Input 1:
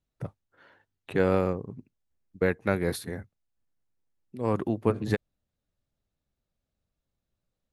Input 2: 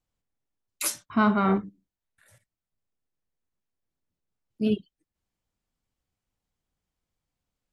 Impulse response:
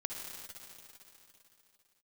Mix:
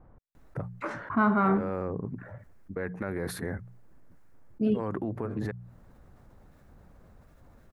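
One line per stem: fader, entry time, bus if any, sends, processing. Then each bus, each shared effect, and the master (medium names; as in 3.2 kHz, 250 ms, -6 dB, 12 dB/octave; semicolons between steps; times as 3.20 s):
-7.5 dB, 0.35 s, no send, hum notches 60/120/180 Hz; compression, threshold -26 dBFS, peak gain reduction 8.5 dB; peak limiter -24.5 dBFS, peak gain reduction 10.5 dB
-3.5 dB, 0.00 s, no send, de-esser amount 55%; level-controlled noise filter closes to 910 Hz, open at -22 dBFS; trance gate "x.x.xxxxxx.xx" 83 bpm -60 dB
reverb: none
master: resonant high shelf 2.3 kHz -9.5 dB, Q 1.5; level flattener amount 50%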